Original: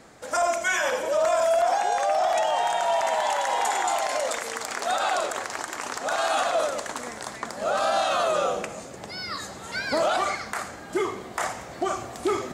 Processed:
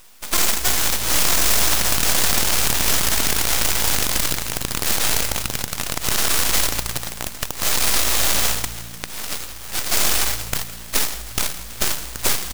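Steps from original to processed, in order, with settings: spectral contrast lowered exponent 0.16; dynamic EQ 5700 Hz, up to +4 dB, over -36 dBFS, Q 1; in parallel at +2 dB: compressor, threshold -32 dBFS, peak gain reduction 15 dB; on the sum: added harmonics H 8 -7 dB, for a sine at -2 dBFS; full-wave rectifier; on a send: frequency-shifting echo 0.164 s, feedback 51%, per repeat -57 Hz, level -16.5 dB; on the sum: gain -2 dB

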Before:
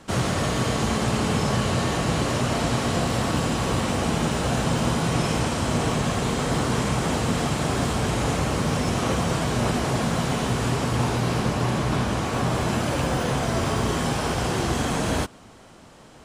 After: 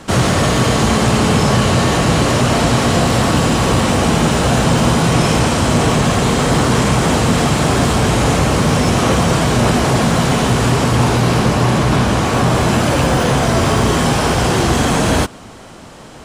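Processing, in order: in parallel at -4 dB: soft clip -24.5 dBFS, distortion -10 dB; on the sum: gain +7.5 dB

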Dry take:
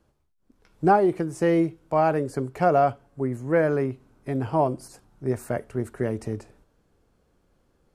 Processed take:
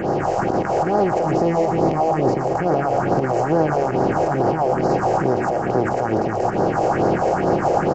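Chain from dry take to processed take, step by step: per-bin compression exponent 0.2; recorder AGC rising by 27 dB/s; 1.19–2.41 bell 1500 Hz -9 dB 0.41 oct; limiter -7.5 dBFS, peak gain reduction 10 dB; phaser stages 4, 2.3 Hz, lowest notch 220–2400 Hz; split-band echo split 570 Hz, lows 0.665 s, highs 0.12 s, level -11 dB; downsampling 16000 Hz

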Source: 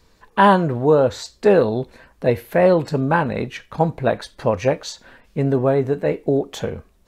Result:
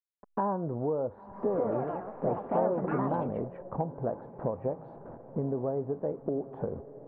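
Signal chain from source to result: level-crossing sampler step -37.5 dBFS; LPF 1000 Hz 24 dB/oct; low shelf 71 Hz -11 dB; compressor 4:1, threshold -31 dBFS, peak gain reduction 17 dB; diffused feedback echo 0.991 s, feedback 44%, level -14.5 dB; 1.14–3.7 echoes that change speed 0.189 s, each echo +3 st, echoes 3

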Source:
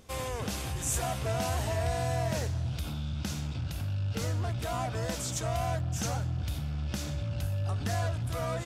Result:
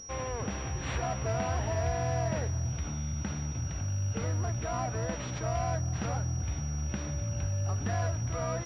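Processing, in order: pulse-width modulation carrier 5700 Hz

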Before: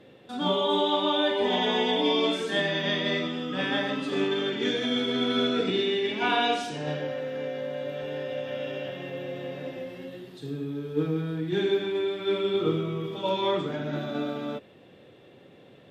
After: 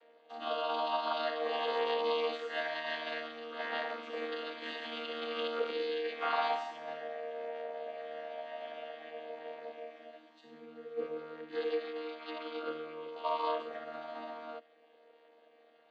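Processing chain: chord vocoder bare fifth, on D#3; Bessel high-pass 790 Hz, order 4; high shelf 3700 Hz -8.5 dB; gain +2.5 dB

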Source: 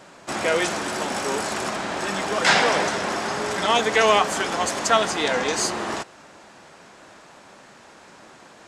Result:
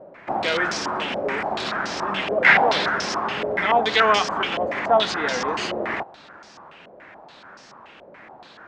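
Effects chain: dynamic EQ 710 Hz, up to -3 dB, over -28 dBFS, Q 0.77; stepped low-pass 7 Hz 580–5400 Hz; gain -1.5 dB

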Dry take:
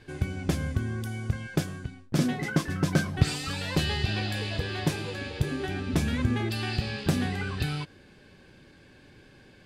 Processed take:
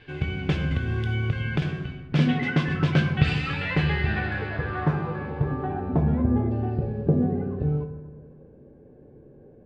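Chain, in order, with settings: low-pass sweep 2900 Hz -> 500 Hz, 3.11–6.99; on a send at -4 dB: reverb RT60 1.3 s, pre-delay 3 ms; 0.71–1.62 on the sum: three-band squash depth 100%

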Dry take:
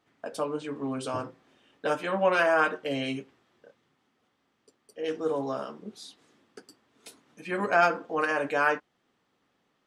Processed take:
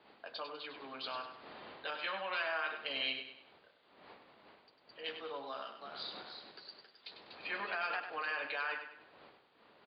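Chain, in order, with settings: wind noise 420 Hz -43 dBFS; 5.48–8 echoes that change speed 0.332 s, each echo +1 st, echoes 2, each echo -6 dB; Chebyshev low-pass 4700 Hz, order 8; low shelf 350 Hz -3.5 dB; limiter -21.5 dBFS, peak gain reduction 11.5 dB; differentiator; feedback echo 99 ms, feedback 40%, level -8.5 dB; gain +9 dB

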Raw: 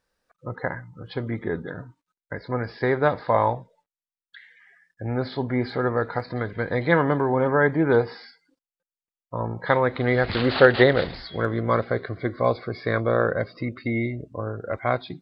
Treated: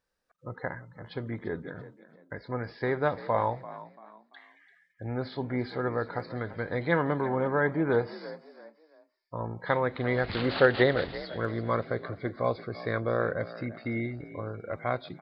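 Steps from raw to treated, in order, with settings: frequency-shifting echo 0.34 s, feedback 35%, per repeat +51 Hz, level -16 dB; gain -6.5 dB

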